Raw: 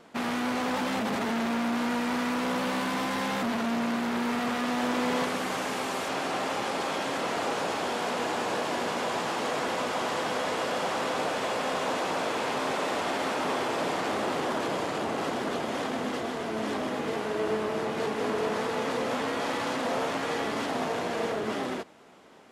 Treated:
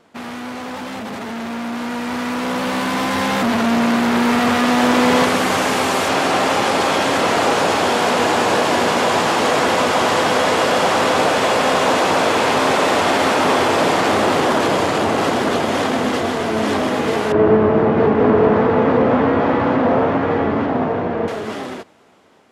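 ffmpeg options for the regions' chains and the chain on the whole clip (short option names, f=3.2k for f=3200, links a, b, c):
-filter_complex "[0:a]asettb=1/sr,asplit=3[a][b][c];[a]atrim=end=17.324[d];[b]atrim=start=17.32:end=21.28,asetpts=PTS-STARTPTS,afade=t=in:d=0.004:c=qsin,afade=t=out:st=3.956:d=0.004:c=qsin,lowpass=1.7k,lowshelf=f=410:g=8[e];[c]atrim=start=21.276[f];[d][e]acrossfade=d=0.004:c1=hsin:c2=qsin[g];[g][f]acrossfade=d=0.004:c1=qsin:c2=hsin,equalizer=f=93:w=4.8:g=9,dynaudnorm=f=640:g=9:m=14dB"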